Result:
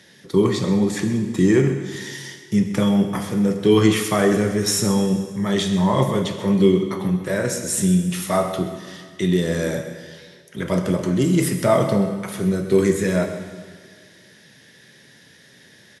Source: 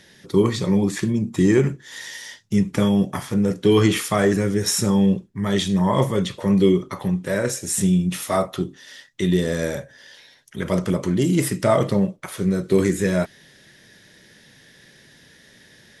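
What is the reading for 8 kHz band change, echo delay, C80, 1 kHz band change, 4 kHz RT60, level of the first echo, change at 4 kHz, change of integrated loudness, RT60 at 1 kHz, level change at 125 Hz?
+1.0 dB, 130 ms, 8.0 dB, +1.0 dB, 1.7 s, −13.5 dB, +1.0 dB, +0.5 dB, 1.8 s, +0.5 dB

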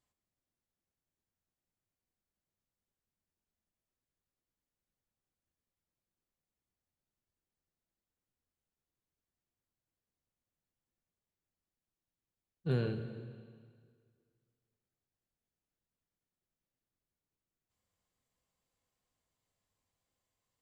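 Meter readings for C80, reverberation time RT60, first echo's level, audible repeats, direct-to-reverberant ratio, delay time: 9.5 dB, 2.0 s, no echo audible, no echo audible, 7.0 dB, no echo audible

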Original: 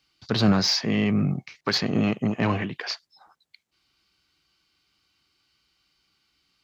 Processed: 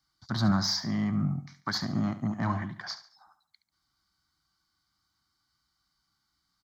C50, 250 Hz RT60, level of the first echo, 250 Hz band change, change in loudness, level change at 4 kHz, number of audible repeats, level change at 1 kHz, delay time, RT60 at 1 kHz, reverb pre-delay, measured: no reverb audible, no reverb audible, −13.0 dB, −5.5 dB, −6.0 dB, −7.0 dB, 3, −3.5 dB, 71 ms, no reverb audible, no reverb audible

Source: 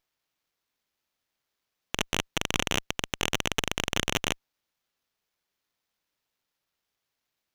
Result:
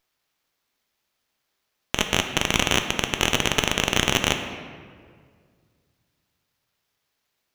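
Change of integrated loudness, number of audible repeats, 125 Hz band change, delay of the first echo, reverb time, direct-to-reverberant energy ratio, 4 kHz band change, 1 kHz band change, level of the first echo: +7.0 dB, no echo audible, +6.5 dB, no echo audible, 2.0 s, 5.0 dB, +7.0 dB, +7.0 dB, no echo audible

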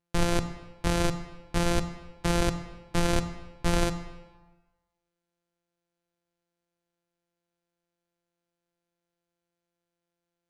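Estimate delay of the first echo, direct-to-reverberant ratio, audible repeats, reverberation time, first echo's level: no echo audible, 9.0 dB, no echo audible, 1.2 s, no echo audible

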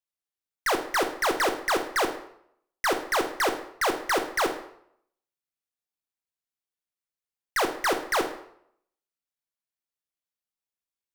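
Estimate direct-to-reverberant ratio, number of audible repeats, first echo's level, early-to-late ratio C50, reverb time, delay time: 5.0 dB, no echo audible, no echo audible, 9.0 dB, 0.70 s, no echo audible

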